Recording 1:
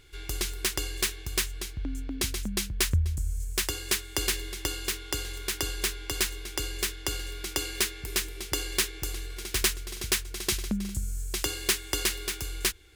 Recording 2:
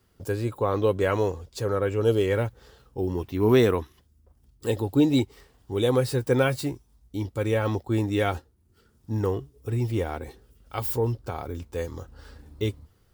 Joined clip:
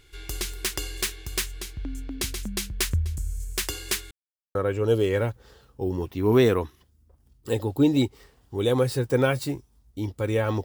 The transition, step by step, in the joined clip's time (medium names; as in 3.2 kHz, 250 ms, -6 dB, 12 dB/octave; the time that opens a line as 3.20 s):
recording 1
4.11–4.55 s: mute
4.55 s: go over to recording 2 from 1.72 s